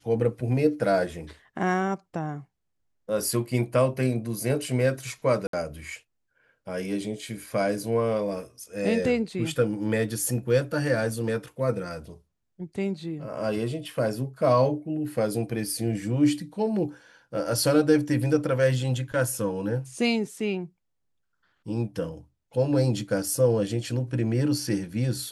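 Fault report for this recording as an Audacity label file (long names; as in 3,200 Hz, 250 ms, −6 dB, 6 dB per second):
5.470000	5.530000	drop-out 63 ms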